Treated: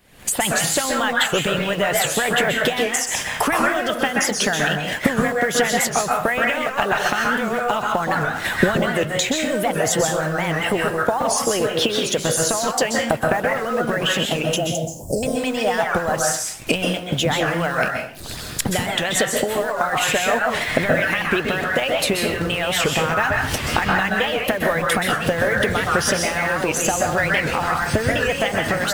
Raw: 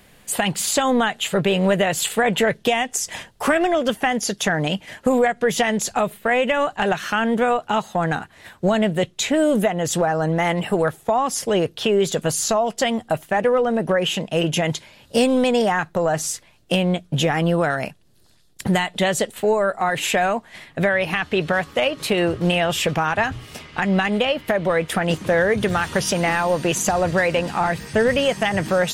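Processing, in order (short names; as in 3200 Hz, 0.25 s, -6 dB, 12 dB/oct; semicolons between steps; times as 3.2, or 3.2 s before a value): recorder AGC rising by 60 dB/s; in parallel at -5.5 dB: bit-crush 5-bit; on the sum: harmonic-percussive split harmonic -9 dB; 14.56–15.23 elliptic band-stop 730–6300 Hz, stop band 40 dB; on a send at -1.5 dB: bell 1400 Hz +7 dB 0.74 oct + reverb RT60 0.55 s, pre-delay 0.118 s; on the sum: maximiser -2.5 dB; record warp 78 rpm, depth 160 cents; gain -1 dB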